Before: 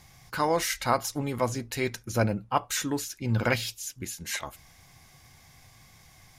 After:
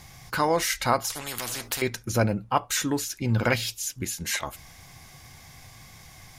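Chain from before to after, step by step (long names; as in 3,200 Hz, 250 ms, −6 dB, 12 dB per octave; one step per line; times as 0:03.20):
in parallel at +1.5 dB: downward compressor, threshold −35 dBFS, peak gain reduction 16 dB
0:01.10–0:01.82: on the sum: every bin compressed towards the loudest bin 4 to 1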